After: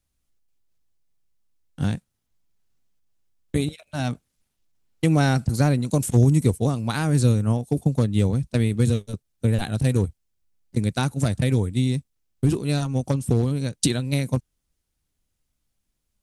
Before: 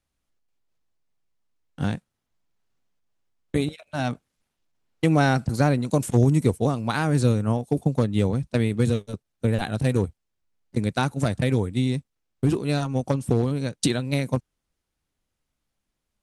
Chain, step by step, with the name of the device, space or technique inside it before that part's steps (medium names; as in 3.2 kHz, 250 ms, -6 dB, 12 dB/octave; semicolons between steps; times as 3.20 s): smiley-face EQ (bass shelf 130 Hz +6 dB; peaking EQ 950 Hz -3.5 dB 2.8 oct; treble shelf 5.8 kHz +7 dB)